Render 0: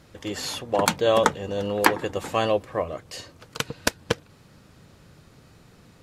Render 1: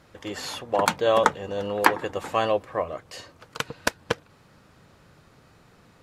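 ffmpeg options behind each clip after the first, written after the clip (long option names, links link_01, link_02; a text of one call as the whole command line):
ffmpeg -i in.wav -af "equalizer=frequency=1100:width=0.49:gain=6.5,volume=-5dB" out.wav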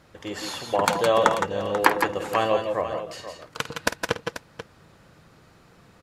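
ffmpeg -i in.wav -af "aecho=1:1:51|162|168|488:0.224|0.376|0.355|0.237" out.wav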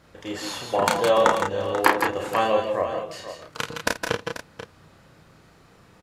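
ffmpeg -i in.wav -filter_complex "[0:a]asplit=2[link_01][link_02];[link_02]adelay=32,volume=-3dB[link_03];[link_01][link_03]amix=inputs=2:normalize=0,volume=-1dB" out.wav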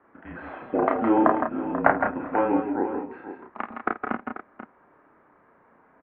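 ffmpeg -i in.wav -af "highpass=frequency=490:width_type=q:width=0.5412,highpass=frequency=490:width_type=q:width=1.307,lowpass=frequency=2100:width_type=q:width=0.5176,lowpass=frequency=2100:width_type=q:width=0.7071,lowpass=frequency=2100:width_type=q:width=1.932,afreqshift=-240" out.wav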